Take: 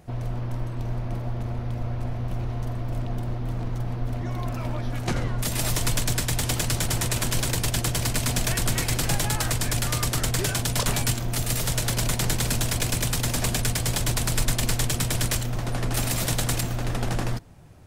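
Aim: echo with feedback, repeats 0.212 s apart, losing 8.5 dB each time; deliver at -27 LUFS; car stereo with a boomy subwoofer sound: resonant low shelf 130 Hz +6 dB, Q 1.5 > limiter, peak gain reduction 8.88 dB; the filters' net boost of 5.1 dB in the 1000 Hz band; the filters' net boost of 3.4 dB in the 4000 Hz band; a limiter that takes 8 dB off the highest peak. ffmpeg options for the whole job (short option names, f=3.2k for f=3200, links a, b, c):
-af "equalizer=f=1k:t=o:g=6.5,equalizer=f=4k:t=o:g=4,alimiter=limit=-15.5dB:level=0:latency=1,lowshelf=f=130:t=q:w=1.5:g=6,aecho=1:1:212|424|636|848:0.376|0.143|0.0543|0.0206,volume=2.5dB,alimiter=limit=-16.5dB:level=0:latency=1"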